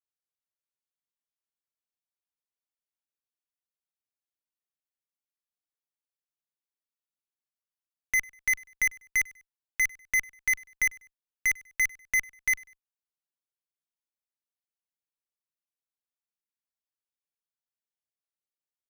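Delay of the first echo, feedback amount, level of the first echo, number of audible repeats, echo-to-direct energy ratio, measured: 98 ms, 36%, −24.0 dB, 2, −23.5 dB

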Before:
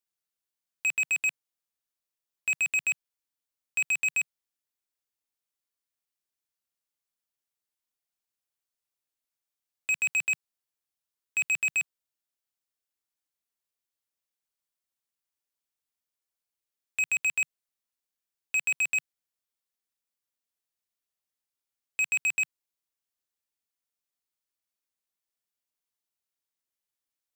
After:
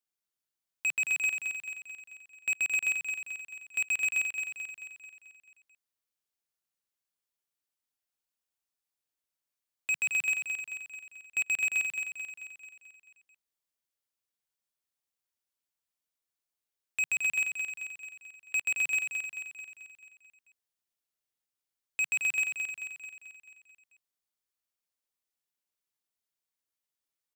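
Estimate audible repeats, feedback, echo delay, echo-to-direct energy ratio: 6, 56%, 219 ms, −4.5 dB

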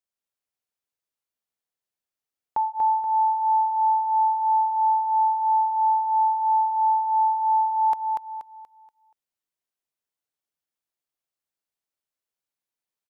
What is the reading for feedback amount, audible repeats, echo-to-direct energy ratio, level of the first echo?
36%, 4, −3.0 dB, −3.5 dB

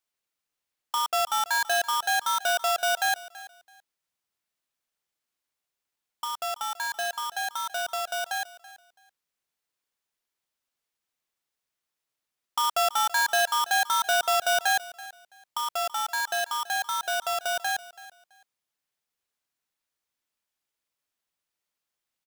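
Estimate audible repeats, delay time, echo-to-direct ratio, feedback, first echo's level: 2, 331 ms, −18.0 dB, 22%, −18.0 dB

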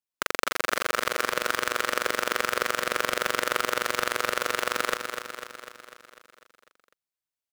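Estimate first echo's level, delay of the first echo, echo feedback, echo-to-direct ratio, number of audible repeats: −7.0 dB, 249 ms, 60%, −5.0 dB, 7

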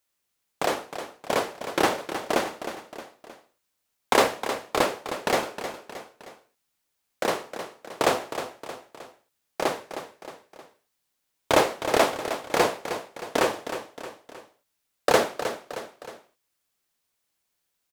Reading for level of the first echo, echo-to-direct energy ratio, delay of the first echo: −10.0 dB, −9.0 dB, 312 ms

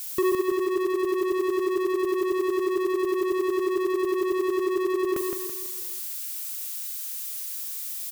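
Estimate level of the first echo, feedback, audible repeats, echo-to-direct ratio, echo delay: −4.5 dB, 44%, 5, −3.5 dB, 166 ms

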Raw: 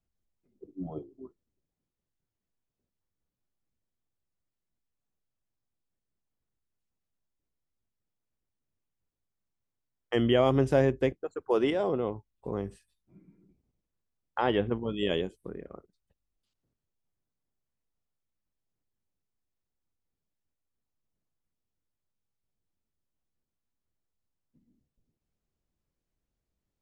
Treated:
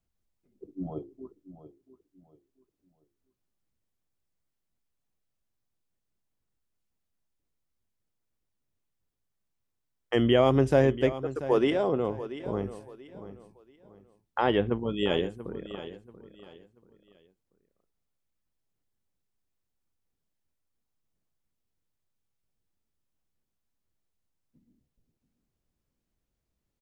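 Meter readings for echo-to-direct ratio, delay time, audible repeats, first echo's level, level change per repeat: −13.5 dB, 685 ms, 3, −14.0 dB, −10.5 dB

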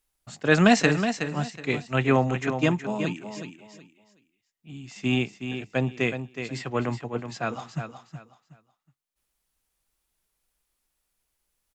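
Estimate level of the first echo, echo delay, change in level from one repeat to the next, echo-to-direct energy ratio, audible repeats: −8.5 dB, 370 ms, −12.0 dB, −8.0 dB, 3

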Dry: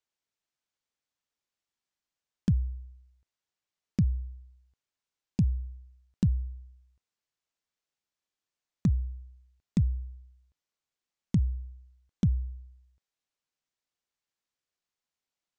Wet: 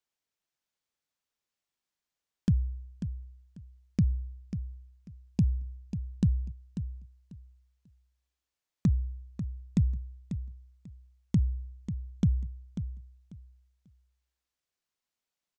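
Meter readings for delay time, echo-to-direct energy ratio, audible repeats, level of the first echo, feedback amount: 542 ms, −10.0 dB, 2, −10.0 dB, 21%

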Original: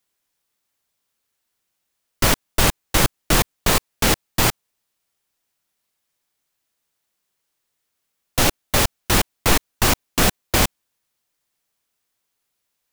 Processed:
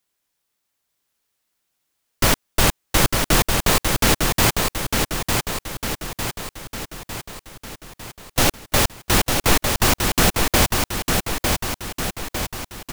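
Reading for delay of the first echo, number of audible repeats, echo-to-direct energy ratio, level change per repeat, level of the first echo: 903 ms, 6, −2.5 dB, −5.0 dB, −4.0 dB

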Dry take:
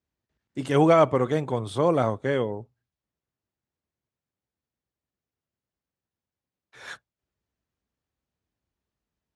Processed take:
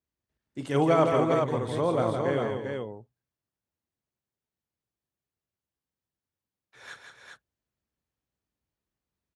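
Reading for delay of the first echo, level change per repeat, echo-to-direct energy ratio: 43 ms, repeats not evenly spaced, −1.0 dB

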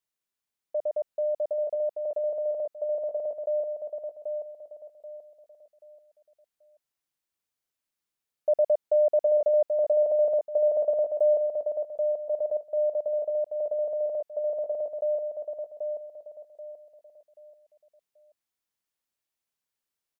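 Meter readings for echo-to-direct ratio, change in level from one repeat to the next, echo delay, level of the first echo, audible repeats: −4.5 dB, −9.5 dB, 783 ms, −5.0 dB, 4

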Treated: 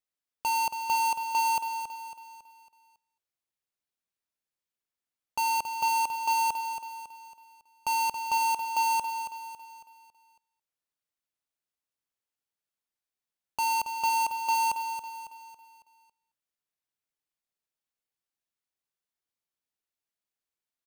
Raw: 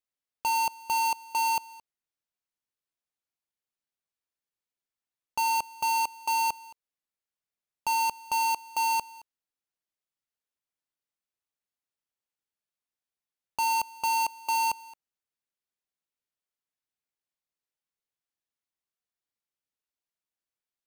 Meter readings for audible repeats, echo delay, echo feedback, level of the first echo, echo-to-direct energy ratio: 4, 276 ms, 44%, −9.0 dB, −8.0 dB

